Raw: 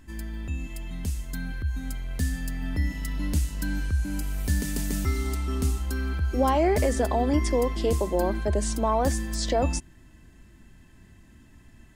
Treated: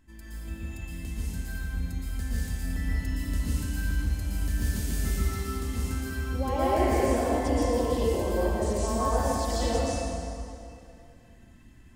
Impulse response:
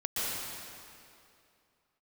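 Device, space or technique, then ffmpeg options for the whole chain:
stairwell: -filter_complex "[1:a]atrim=start_sample=2205[a];[0:a][a]afir=irnorm=-1:irlink=0,volume=-9dB"

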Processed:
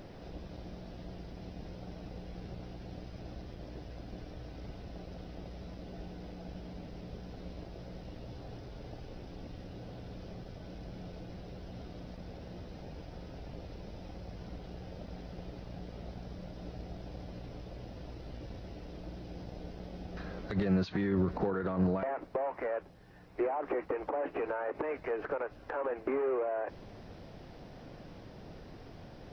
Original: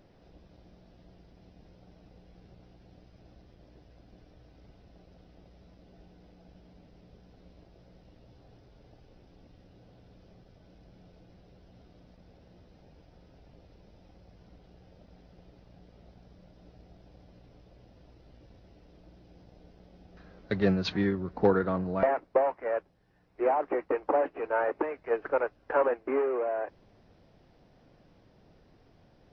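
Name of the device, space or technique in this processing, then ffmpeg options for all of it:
de-esser from a sidechain: -filter_complex "[0:a]asplit=2[a][b];[b]highpass=f=4.2k:p=1,apad=whole_len=1293040[c];[a][c]sidechaincompress=threshold=-57dB:ratio=12:attack=1.9:release=47,volume=11dB"

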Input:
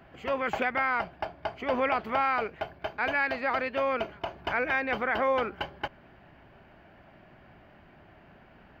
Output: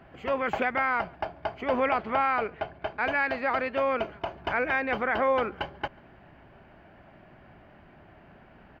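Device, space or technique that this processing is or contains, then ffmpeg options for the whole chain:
behind a face mask: -filter_complex "[0:a]highshelf=f=3.5k:g=-7,asettb=1/sr,asplit=3[a][b][c];[a]atrim=end=2.034[d];[b]atrim=start=2.03:end=2.99,asetpts=PTS-STARTPTS,afade=t=in:d=0.004:c=qsin,afade=t=out:st=0.956:d=0.004:c=qsin,lowpass=5.2k[e];[c]atrim=start=2.986[f];[d][e]acrossfade=d=0.004:c1=hsin:c2=qsin[g];[g][f]acrossfade=d=0.004:c1=qsin:c2=hsin,asplit=2[h][i];[i]adelay=139.9,volume=-28dB,highshelf=f=4k:g=-3.15[j];[h][j]amix=inputs=2:normalize=0,volume=2dB"

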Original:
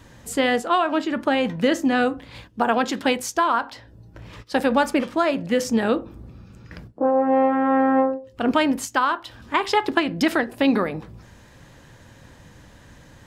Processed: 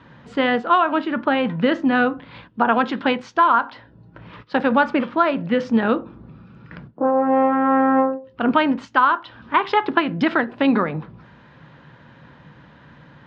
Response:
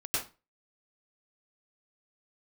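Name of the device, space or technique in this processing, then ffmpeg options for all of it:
guitar cabinet: -af "highpass=84,equalizer=f=95:t=q:w=4:g=-8,equalizer=f=150:t=q:w=4:g=8,equalizer=f=230:t=q:w=4:g=3,equalizer=f=1k:t=q:w=4:g=5,equalizer=f=1.4k:t=q:w=4:g=6,lowpass=f=3.7k:w=0.5412,lowpass=f=3.7k:w=1.3066"

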